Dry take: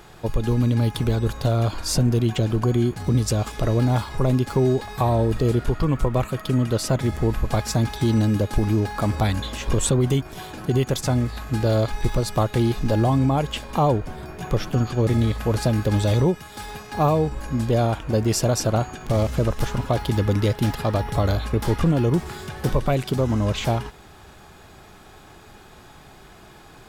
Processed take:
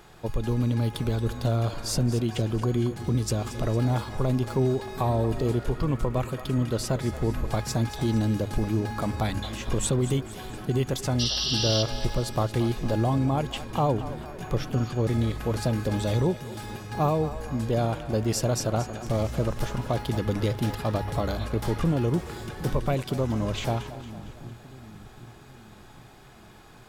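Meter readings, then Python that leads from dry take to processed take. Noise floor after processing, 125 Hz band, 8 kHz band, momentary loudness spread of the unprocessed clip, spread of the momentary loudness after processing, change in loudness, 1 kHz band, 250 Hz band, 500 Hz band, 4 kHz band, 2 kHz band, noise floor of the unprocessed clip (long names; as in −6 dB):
−49 dBFS, −5.0 dB, −3.5 dB, 5 LU, 7 LU, −5.0 dB, −4.5 dB, −4.5 dB, −4.5 dB, 0.0 dB, −4.5 dB, −47 dBFS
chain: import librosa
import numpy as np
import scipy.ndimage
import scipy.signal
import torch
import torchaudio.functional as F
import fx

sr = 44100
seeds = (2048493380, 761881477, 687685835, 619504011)

y = fx.hum_notches(x, sr, base_hz=50, count=2)
y = fx.spec_paint(y, sr, seeds[0], shape='noise', start_s=11.19, length_s=0.64, low_hz=2700.0, high_hz=5900.0, level_db=-23.0)
y = fx.echo_split(y, sr, split_hz=350.0, low_ms=765, high_ms=228, feedback_pct=52, wet_db=-13.5)
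y = y * 10.0 ** (-5.0 / 20.0)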